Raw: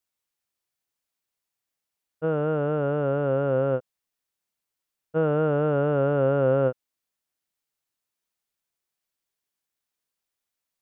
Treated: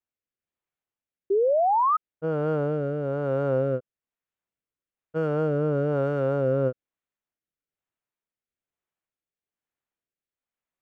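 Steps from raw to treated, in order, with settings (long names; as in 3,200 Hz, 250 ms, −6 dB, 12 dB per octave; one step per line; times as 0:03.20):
adaptive Wiener filter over 9 samples
rotating-speaker cabinet horn 1.1 Hz
sound drawn into the spectrogram rise, 0:01.30–0:01.97, 380–1,300 Hz −21 dBFS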